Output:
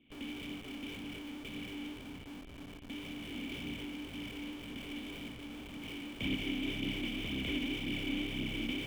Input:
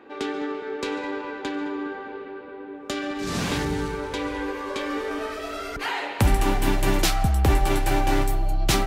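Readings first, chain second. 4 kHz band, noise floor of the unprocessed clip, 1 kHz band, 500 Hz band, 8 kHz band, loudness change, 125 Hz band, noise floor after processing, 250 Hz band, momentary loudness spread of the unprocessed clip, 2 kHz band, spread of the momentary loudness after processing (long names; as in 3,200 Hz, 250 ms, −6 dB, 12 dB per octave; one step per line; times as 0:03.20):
−7.5 dB, −38 dBFS, −26.5 dB, −20.0 dB, −22.5 dB, −14.0 dB, −19.0 dB, −49 dBFS, −9.5 dB, 10 LU, −11.5 dB, 10 LU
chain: compressing power law on the bin magnitudes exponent 0.11
formant resonators in series i
on a send: echo with a time of its own for lows and highs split 2,700 Hz, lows 153 ms, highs 209 ms, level −16 dB
on the sum: flanger 1.9 Hz, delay 0.2 ms, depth 4 ms, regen −5%
in parallel at −8.5 dB: comparator with hysteresis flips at −55.5 dBFS
on the sum: level +3 dB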